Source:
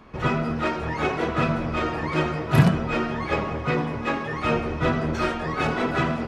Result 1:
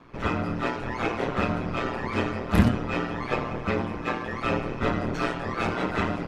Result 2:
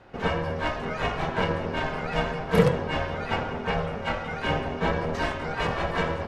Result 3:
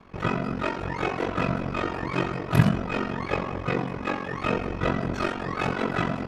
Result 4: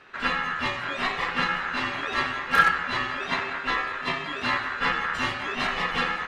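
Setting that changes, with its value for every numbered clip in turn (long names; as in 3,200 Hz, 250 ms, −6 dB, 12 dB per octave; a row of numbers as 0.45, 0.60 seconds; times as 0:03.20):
ring modulation, frequency: 60, 320, 23, 1,500 Hertz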